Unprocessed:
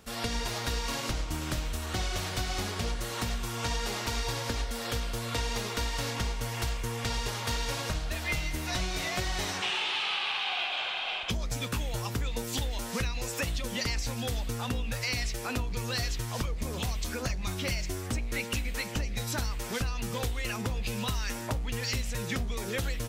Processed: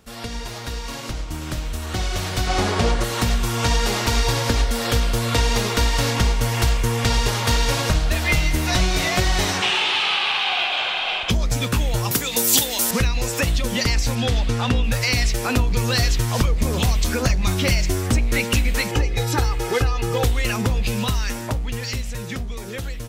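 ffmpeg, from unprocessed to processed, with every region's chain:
ffmpeg -i in.wav -filter_complex "[0:a]asettb=1/sr,asplit=3[link_01][link_02][link_03];[link_01]atrim=end=2.474[link_04];[link_02]atrim=start=2.47:end=3.04,asetpts=PTS-STARTPTS,afade=type=in:duration=0.004:curve=qsin,afade=type=out:start_time=0.566:duration=0.004:curve=qsin,lowpass=9800,equalizer=frequency=690:width_type=o:width=2.9:gain=6.5[link_05];[link_03]atrim=start=3.036[link_06];[link_04][link_05]acrossfade=duration=0.004:curve1=hsin:curve2=qsin[link_07];[link_07][link_06]acrossfade=duration=0.004:curve1=qsin:curve2=hsin,asettb=1/sr,asplit=3[link_08][link_09][link_10];[link_08]atrim=end=12.114[link_11];[link_09]atrim=start=12.11:end=12.91,asetpts=PTS-STARTPTS,afade=type=in:duration=0.004:curve=qsin,afade=type=out:start_time=0.796:duration=0.004:curve=qsin,highpass=190,aemphasis=mode=production:type=75kf,acompressor=mode=upward:threshold=-30dB:ratio=2.5:attack=3.2:release=140:knee=2.83:detection=peak[link_12];[link_10]atrim=start=12.906[link_13];[link_11][link_12]acrossfade=duration=0.004:curve1=hsin:curve2=qsin[link_14];[link_14][link_13]acrossfade=duration=0.004:curve1=qsin:curve2=hsin,asettb=1/sr,asplit=3[link_15][link_16][link_17];[link_15]atrim=end=14.154[link_18];[link_16]atrim=start=14.15:end=14.84,asetpts=PTS-STARTPTS,afade=type=in:duration=0.004:curve=qsin,afade=type=out:start_time=0.686:duration=0.004:curve=qsin,lowpass=3200,aemphasis=mode=production:type=75kf[link_19];[link_17]atrim=start=14.836[link_20];[link_18][link_19]acrossfade=duration=0.004:curve1=hsin:curve2=qsin[link_21];[link_21][link_20]acrossfade=duration=0.004:curve1=qsin:curve2=hsin,asettb=1/sr,asplit=3[link_22][link_23][link_24];[link_22]atrim=end=18.914[link_25];[link_23]atrim=start=18.91:end=20.24,asetpts=PTS-STARTPTS,afade=type=in:duration=0.004:curve=qsin,afade=type=out:start_time=1.326:duration=0.004:curve=qsin,highpass=frequency=100:poles=1,highshelf=frequency=2700:gain=-8,aecho=1:1:2.4:0.85,atrim=end_sample=58653[link_26];[link_24]atrim=start=20.236[link_27];[link_25][link_26]acrossfade=duration=0.004:curve1=hsin:curve2=qsin[link_28];[link_28][link_27]acrossfade=duration=0.004:curve1=qsin:curve2=hsin,lowshelf=frequency=400:gain=3,dynaudnorm=framelen=420:gausssize=11:maxgain=11dB" out.wav

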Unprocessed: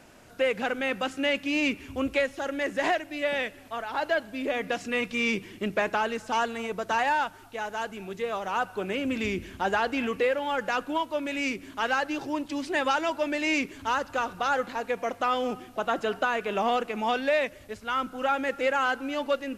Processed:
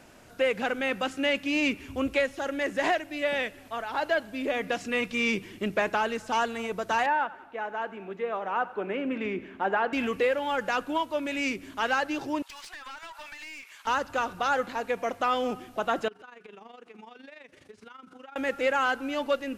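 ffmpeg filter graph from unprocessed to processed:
ffmpeg -i in.wav -filter_complex "[0:a]asettb=1/sr,asplit=3[link_01][link_02][link_03];[link_01]atrim=end=7.064[link_04];[link_02]atrim=start=7.06:end=9.93,asetpts=PTS-STARTPTS,afade=type=in:duration=0.004:curve=qsin,afade=type=out:start_time=2.866:duration=0.004:curve=qsin,acrossover=split=180 2600:gain=0.0891 1 0.0708[link_05][link_06][link_07];[link_05][link_06][link_07]amix=inputs=3:normalize=0,aecho=1:1:91|182|273|364:0.119|0.0582|0.0285|0.014,atrim=end_sample=126567[link_08];[link_03]atrim=start=9.926[link_09];[link_04][link_08]acrossfade=duration=0.004:curve1=hsin:curve2=qsin[link_10];[link_10][link_09]acrossfade=duration=0.004:curve1=qsin:curve2=hsin,asettb=1/sr,asplit=3[link_11][link_12][link_13];[link_11]atrim=end=12.424[link_14];[link_12]atrim=start=12.42:end=13.87,asetpts=PTS-STARTPTS,afade=type=in:duration=0.004:curve=qsin,afade=type=out:start_time=1.446:duration=0.004:curve=qsin,highpass=frequency=940:width=0.5412,highpass=frequency=940:width=1.3066,acompressor=threshold=-36dB:ratio=16:attack=3.2:release=140:knee=1:detection=peak,aeval=exprs='clip(val(0),-1,0.00668)':channel_layout=same[link_15];[link_13]atrim=start=13.866[link_16];[link_14][link_15]acrossfade=duration=0.004:curve1=hsin:curve2=qsin[link_17];[link_17][link_16]acrossfade=duration=0.004:curve1=qsin:curve2=hsin,asettb=1/sr,asplit=3[link_18][link_19][link_20];[link_18]atrim=end=16.084[link_21];[link_19]atrim=start=16.08:end=18.36,asetpts=PTS-STARTPTS,afade=type=in:duration=0.004:curve=qsin,afade=type=out:start_time=2.276:duration=0.004:curve=qsin,highpass=130,equalizer=frequency=420:width_type=q:width=4:gain=4,equalizer=frequency=610:width_type=q:width=4:gain=-9,equalizer=frequency=7500:width_type=q:width=4:gain=-4,lowpass=frequency=9500:width=0.5412,lowpass=frequency=9500:width=1.3066,acompressor=threshold=-42dB:ratio=8:attack=3.2:release=140:knee=1:detection=peak,tremolo=f=24:d=0.71[link_22];[link_20]atrim=start=18.356[link_23];[link_21][link_22]acrossfade=duration=0.004:curve1=hsin:curve2=qsin[link_24];[link_24][link_23]acrossfade=duration=0.004:curve1=qsin:curve2=hsin" out.wav

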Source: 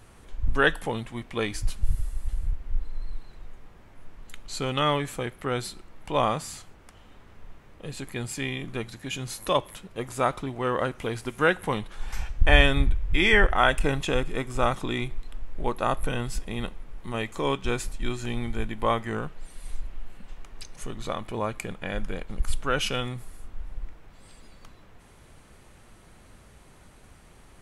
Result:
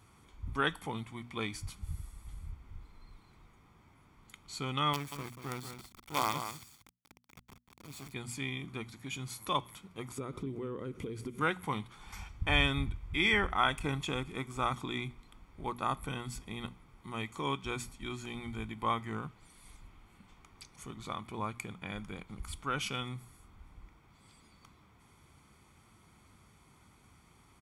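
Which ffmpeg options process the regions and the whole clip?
ffmpeg -i in.wav -filter_complex "[0:a]asettb=1/sr,asplit=3[link_01][link_02][link_03];[link_01]atrim=end=4.934[link_04];[link_02]atrim=start=4.93:end=8.13,asetpts=PTS-STARTPTS,afade=type=in:duration=0.004:curve=qsin,afade=type=out:start_time=3.196:duration=0.004:curve=qsin,acrusher=bits=4:dc=4:mix=0:aa=0.000001,aecho=1:1:185:0.376,atrim=end_sample=141120[link_05];[link_03]atrim=start=8.126[link_06];[link_04][link_05]acrossfade=duration=0.004:curve1=hsin:curve2=qsin[link_07];[link_07][link_06]acrossfade=duration=0.004:curve1=qsin:curve2=hsin,asettb=1/sr,asplit=3[link_08][link_09][link_10];[link_08]atrim=end=10.184[link_11];[link_09]atrim=start=10.18:end=11.41,asetpts=PTS-STARTPTS,afade=type=in:duration=0.004:curve=qsin,afade=type=out:start_time=1.226:duration=0.004:curve=qsin,lowshelf=frequency=590:width_type=q:width=3:gain=8.5,acompressor=threshold=-27dB:ratio=6:attack=3.2:release=140:knee=1:detection=peak[link_12];[link_10]atrim=start=11.406[link_13];[link_11][link_12]acrossfade=duration=0.004:curve1=hsin:curve2=qsin[link_14];[link_14][link_13]acrossfade=duration=0.004:curve1=qsin:curve2=hsin,highpass=73,bandreject=frequency=60:width_type=h:width=6,bandreject=frequency=120:width_type=h:width=6,bandreject=frequency=180:width_type=h:width=6,bandreject=frequency=240:width_type=h:width=6,aecho=1:1:0.9:0.56,volume=-8.5dB" out.wav

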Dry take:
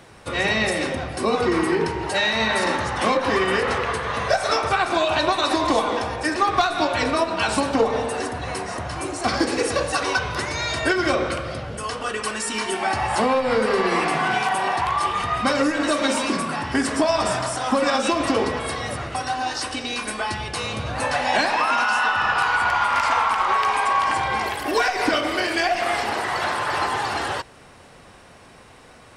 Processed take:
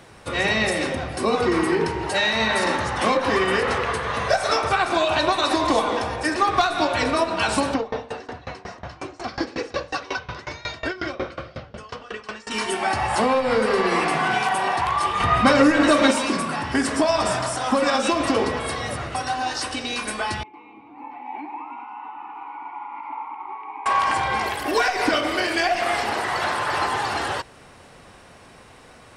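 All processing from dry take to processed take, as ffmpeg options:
ffmpeg -i in.wav -filter_complex "[0:a]asettb=1/sr,asplit=3[link_01][link_02][link_03];[link_01]atrim=end=7.744[link_04];[link_02]atrim=start=7.74:end=12.51,asetpts=PTS-STARTPTS,afade=type=in:duration=0.004:curve=qsin,afade=type=out:start_time=4.766:duration=0.004:curve=qsin,lowpass=frequency=5900:width=0.5412,lowpass=frequency=5900:width=1.3066,aeval=exprs='val(0)*pow(10,-22*if(lt(mod(5.5*n/s,1),2*abs(5.5)/1000),1-mod(5.5*n/s,1)/(2*abs(5.5)/1000),(mod(5.5*n/s,1)-2*abs(5.5)/1000)/(1-2*abs(5.5)/1000))/20)':channel_layout=same[link_05];[link_03]atrim=start=12.506[link_06];[link_04][link_05]acrossfade=duration=0.004:curve1=hsin:curve2=qsin[link_07];[link_07][link_06]acrossfade=duration=0.004:curve1=qsin:curve2=hsin,asettb=1/sr,asplit=3[link_08][link_09][link_10];[link_08]atrim=end=15.204[link_11];[link_09]atrim=start=15.2:end=16.11,asetpts=PTS-STARTPTS,afade=type=in:duration=0.004:curve=qsin,afade=type=out:start_time=0.906:duration=0.004:curve=qsin,bass=frequency=250:gain=3,treble=frequency=4000:gain=-5,acontrast=23[link_12];[link_10]atrim=start=16.106[link_13];[link_11][link_12]acrossfade=duration=0.004:curve1=hsin:curve2=qsin[link_14];[link_14][link_13]acrossfade=duration=0.004:curve1=qsin:curve2=hsin,asettb=1/sr,asplit=3[link_15][link_16][link_17];[link_15]atrim=end=20.434[link_18];[link_16]atrim=start=20.43:end=23.86,asetpts=PTS-STARTPTS,afade=type=in:duration=0.004:curve=qsin,afade=type=out:start_time=3.426:duration=0.004:curve=qsin,acrossover=split=3700[link_19][link_20];[link_20]acompressor=threshold=-46dB:ratio=4:attack=1:release=60[link_21];[link_19][link_21]amix=inputs=2:normalize=0,asplit=3[link_22][link_23][link_24];[link_22]bandpass=frequency=300:width_type=q:width=8,volume=0dB[link_25];[link_23]bandpass=frequency=870:width_type=q:width=8,volume=-6dB[link_26];[link_24]bandpass=frequency=2240:width_type=q:width=8,volume=-9dB[link_27];[link_25][link_26][link_27]amix=inputs=3:normalize=0,acrossover=split=250 2100:gain=0.178 1 0.224[link_28][link_29][link_30];[link_28][link_29][link_30]amix=inputs=3:normalize=0[link_31];[link_17]atrim=start=23.856[link_32];[link_18][link_31]acrossfade=duration=0.004:curve1=hsin:curve2=qsin[link_33];[link_33][link_32]acrossfade=duration=0.004:curve1=qsin:curve2=hsin" out.wav

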